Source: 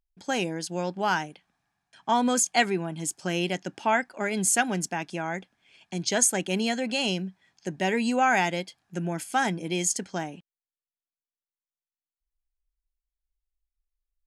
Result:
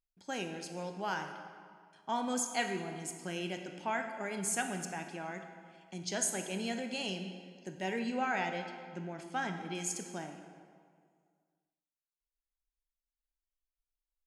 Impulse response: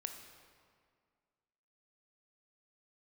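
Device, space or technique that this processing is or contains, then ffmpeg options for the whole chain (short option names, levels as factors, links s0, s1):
stairwell: -filter_complex "[0:a]asettb=1/sr,asplit=3[s0][s1][s2];[s0]atrim=end=7.994[s3];[s1]atrim=start=7.99:end=9.75,asetpts=PTS-STARTPTS,afade=t=in:d=0.004:c=qsin,afade=t=out:st=1.756:d=0.004:c=qsin,lowpass=5000[s4];[s2]atrim=start=9.746[s5];[s3][s4]acrossfade=d=0.004:c1=hsin:c2=qsin[s6];[s6][s5]acrossfade=d=0.004:c1=qsin:c2=hsin[s7];[1:a]atrim=start_sample=2205[s8];[s7][s8]afir=irnorm=-1:irlink=0,volume=0.398"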